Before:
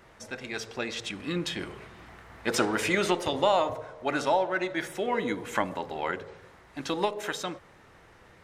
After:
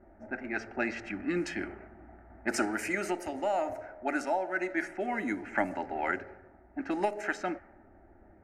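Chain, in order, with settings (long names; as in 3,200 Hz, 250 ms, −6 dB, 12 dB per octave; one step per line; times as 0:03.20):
low-pass that shuts in the quiet parts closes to 570 Hz, open at −24.5 dBFS
speech leveller within 5 dB 0.5 s
phaser with its sweep stopped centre 710 Hz, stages 8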